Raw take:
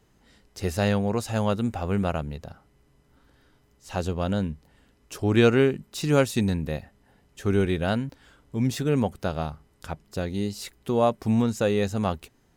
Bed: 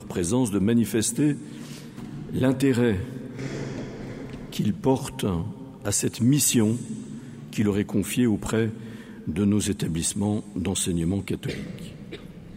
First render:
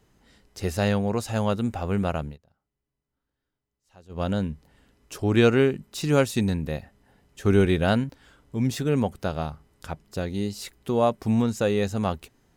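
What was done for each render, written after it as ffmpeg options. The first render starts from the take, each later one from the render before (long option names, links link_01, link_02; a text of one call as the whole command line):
ffmpeg -i in.wav -filter_complex "[0:a]asplit=5[link_01][link_02][link_03][link_04][link_05];[link_01]atrim=end=2.38,asetpts=PTS-STARTPTS,afade=type=out:start_time=2.26:duration=0.12:silence=0.0668344[link_06];[link_02]atrim=start=2.38:end=4.09,asetpts=PTS-STARTPTS,volume=-23.5dB[link_07];[link_03]atrim=start=4.09:end=7.452,asetpts=PTS-STARTPTS,afade=type=in:duration=0.12:silence=0.0668344[link_08];[link_04]atrim=start=7.448:end=8.042,asetpts=PTS-STARTPTS,volume=3.5dB[link_09];[link_05]atrim=start=8.038[link_10];[link_06][link_07][link_08]concat=n=3:v=0:a=1[link_11];[link_11][link_09]acrossfade=duration=0.004:curve1=hsin:curve2=hsin[link_12];[link_12][link_10]acrossfade=duration=0.004:curve1=hsin:curve2=hsin" out.wav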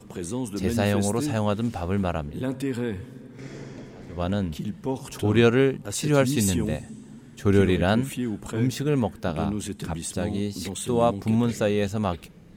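ffmpeg -i in.wav -i bed.wav -filter_complex "[1:a]volume=-7dB[link_01];[0:a][link_01]amix=inputs=2:normalize=0" out.wav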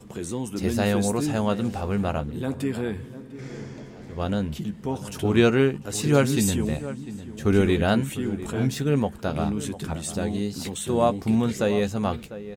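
ffmpeg -i in.wav -filter_complex "[0:a]asplit=2[link_01][link_02];[link_02]adelay=14,volume=-11dB[link_03];[link_01][link_03]amix=inputs=2:normalize=0,asplit=2[link_04][link_05];[link_05]adelay=699.7,volume=-14dB,highshelf=frequency=4000:gain=-15.7[link_06];[link_04][link_06]amix=inputs=2:normalize=0" out.wav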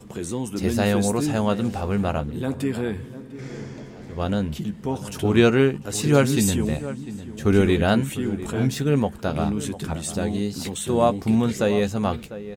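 ffmpeg -i in.wav -af "volume=2dB" out.wav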